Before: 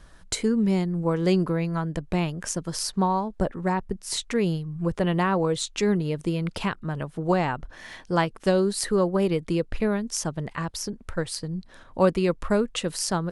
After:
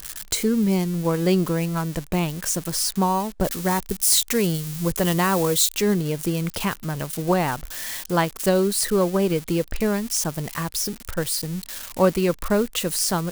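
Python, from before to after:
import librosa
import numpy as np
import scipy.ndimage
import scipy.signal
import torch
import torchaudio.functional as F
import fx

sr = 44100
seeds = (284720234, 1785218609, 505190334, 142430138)

y = x + 0.5 * 10.0 ** (-24.0 / 20.0) * np.diff(np.sign(x), prepend=np.sign(x[:1]))
y = fx.high_shelf(y, sr, hz=3600.0, db=7.5, at=(3.44, 5.74))
y = y * 10.0 ** (2.0 / 20.0)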